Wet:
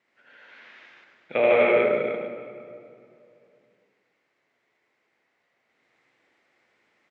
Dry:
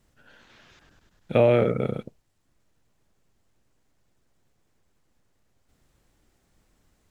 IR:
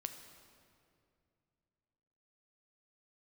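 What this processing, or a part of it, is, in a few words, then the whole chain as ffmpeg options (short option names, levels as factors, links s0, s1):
station announcement: -filter_complex "[0:a]highpass=400,lowpass=3600,equalizer=f=2100:t=o:w=0.48:g=11.5,aecho=1:1:78.72|148.7|250.7:0.891|1|0.891[s0];[1:a]atrim=start_sample=2205[s1];[s0][s1]afir=irnorm=-1:irlink=0"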